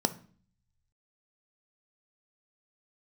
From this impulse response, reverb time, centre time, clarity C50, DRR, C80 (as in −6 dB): 0.45 s, 4 ms, 16.5 dB, 10.0 dB, 22.0 dB